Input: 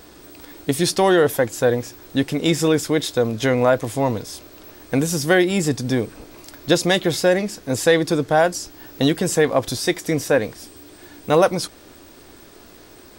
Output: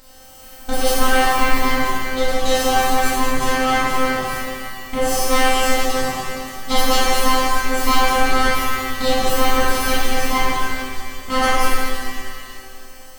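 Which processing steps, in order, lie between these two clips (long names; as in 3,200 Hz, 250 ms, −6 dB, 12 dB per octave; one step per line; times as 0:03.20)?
full-wave rectification
phases set to zero 260 Hz
reverb with rising layers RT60 2.2 s, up +7 semitones, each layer −8 dB, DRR −8.5 dB
level −1 dB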